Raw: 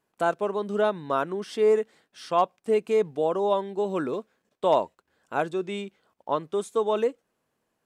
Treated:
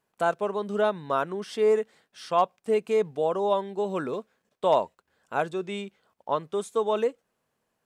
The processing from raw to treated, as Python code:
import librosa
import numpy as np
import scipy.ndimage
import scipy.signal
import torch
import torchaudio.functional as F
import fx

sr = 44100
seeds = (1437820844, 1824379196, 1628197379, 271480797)

y = fx.peak_eq(x, sr, hz=310.0, db=-5.0, octaves=0.53)